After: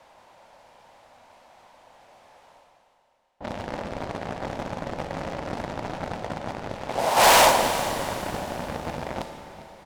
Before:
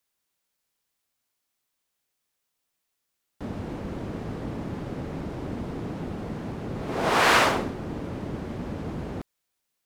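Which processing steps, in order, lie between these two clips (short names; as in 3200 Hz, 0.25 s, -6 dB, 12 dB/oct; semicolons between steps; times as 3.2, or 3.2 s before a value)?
low-pass opened by the level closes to 1500 Hz, open at -23.5 dBFS; pre-emphasis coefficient 0.8; gate -30 dBFS, range -14 dB; band shelf 720 Hz +11.5 dB 1.1 oct; sample leveller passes 3; reverse; upward compressor, threshold -18 dBFS; reverse; soft clip -17.5 dBFS, distortion -17 dB; on a send: echo 0.401 s -18 dB; on the sum: Schroeder reverb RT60 3.5 s, combs from 26 ms, DRR 7.5 dB; gain +6 dB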